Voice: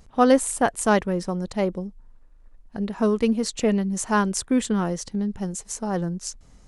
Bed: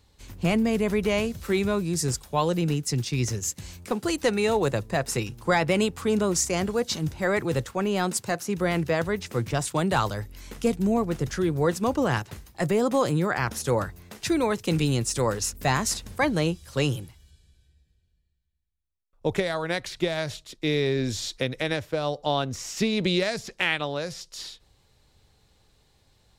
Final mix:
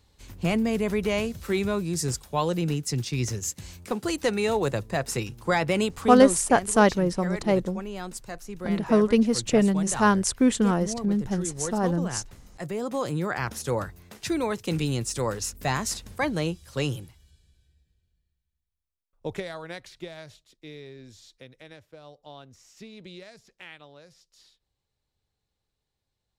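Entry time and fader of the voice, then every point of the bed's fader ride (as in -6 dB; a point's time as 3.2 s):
5.90 s, +1.0 dB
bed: 6.23 s -1.5 dB
6.44 s -10.5 dB
12.5 s -10.5 dB
13.29 s -3 dB
18.77 s -3 dB
20.98 s -20 dB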